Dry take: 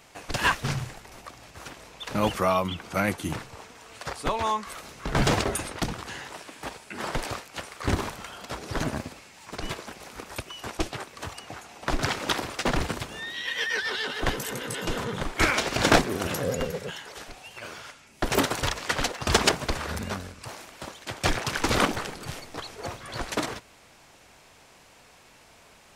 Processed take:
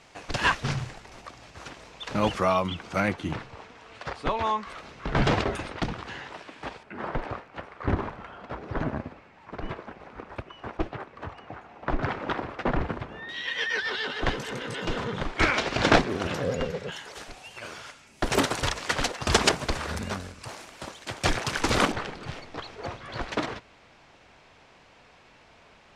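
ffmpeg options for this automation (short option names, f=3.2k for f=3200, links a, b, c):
-af "asetnsamples=n=441:p=0,asendcmd='3.08 lowpass f 3700;6.83 lowpass f 1700;13.29 lowpass f 4600;16.92 lowpass f 10000;21.92 lowpass f 3900',lowpass=6.4k"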